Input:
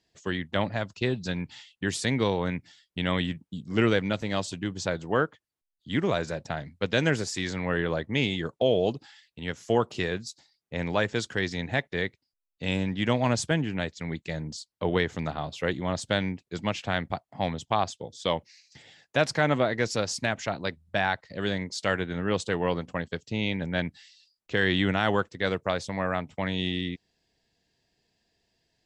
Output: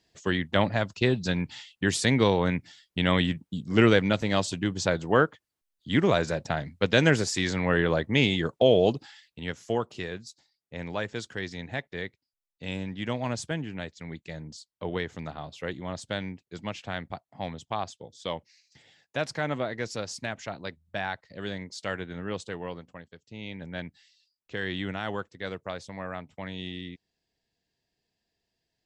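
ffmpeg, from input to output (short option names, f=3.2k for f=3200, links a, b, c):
-af "volume=12.5dB,afade=t=out:st=8.95:d=0.92:silence=0.334965,afade=t=out:st=22.23:d=0.91:silence=0.281838,afade=t=in:st=23.14:d=0.56:silence=0.354813"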